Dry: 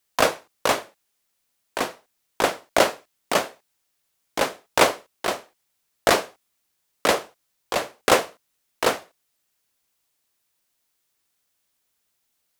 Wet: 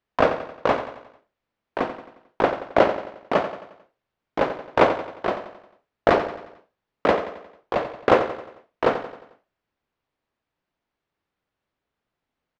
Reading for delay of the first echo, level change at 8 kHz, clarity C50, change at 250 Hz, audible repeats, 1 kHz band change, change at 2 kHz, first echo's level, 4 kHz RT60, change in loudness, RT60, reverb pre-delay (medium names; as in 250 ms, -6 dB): 89 ms, under -20 dB, no reverb, +3.5 dB, 4, +1.0 dB, -3.0 dB, -11.0 dB, no reverb, 0.0 dB, no reverb, no reverb